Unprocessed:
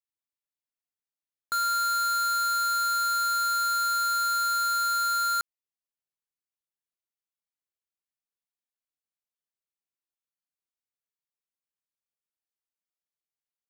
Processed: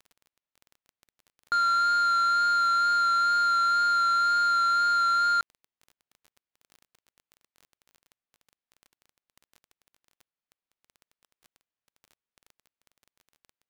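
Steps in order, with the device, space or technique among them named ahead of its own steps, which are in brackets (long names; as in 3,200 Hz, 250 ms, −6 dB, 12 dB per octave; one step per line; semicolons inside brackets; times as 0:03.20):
0:04.41–0:04.92: high-pass filter 61 Hz
lo-fi chain (low-pass filter 3,500 Hz 12 dB per octave; tape wow and flutter 18 cents; surface crackle 22 per second −43 dBFS)
level +3.5 dB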